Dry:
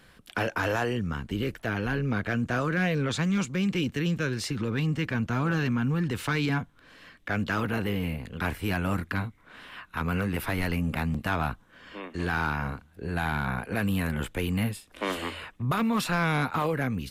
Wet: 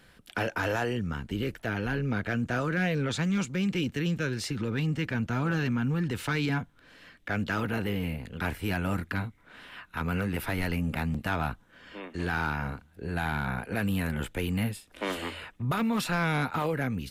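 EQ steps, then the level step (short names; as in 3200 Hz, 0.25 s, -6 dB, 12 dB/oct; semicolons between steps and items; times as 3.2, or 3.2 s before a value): notch 1100 Hz, Q 11; -1.5 dB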